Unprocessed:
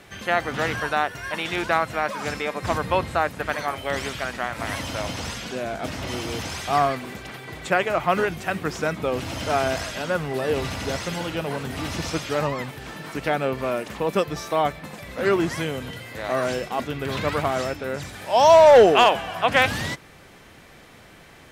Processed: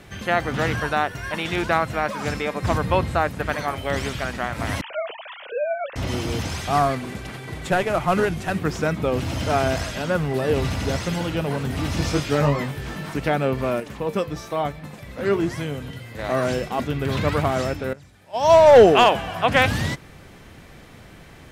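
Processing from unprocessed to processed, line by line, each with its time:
0:04.81–0:05.96: three sine waves on the formant tracks
0:06.70–0:08.59: variable-slope delta modulation 64 kbit/s
0:11.95–0:13.14: double-tracking delay 21 ms −3.5 dB
0:13.80–0:16.19: flanger 1 Hz, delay 6.3 ms, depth 3.8 ms, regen +77%
0:17.93–0:18.76: expander for the loud parts 2.5 to 1, over −22 dBFS
whole clip: low-shelf EQ 250 Hz +9 dB

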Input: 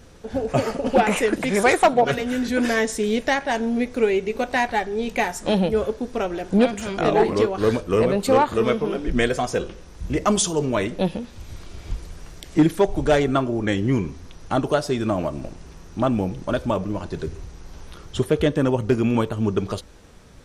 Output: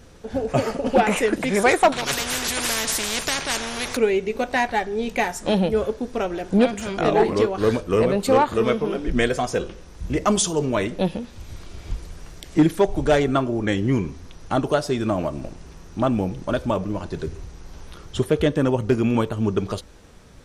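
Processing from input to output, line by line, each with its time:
0:01.92–0:03.97: every bin compressed towards the loudest bin 4 to 1

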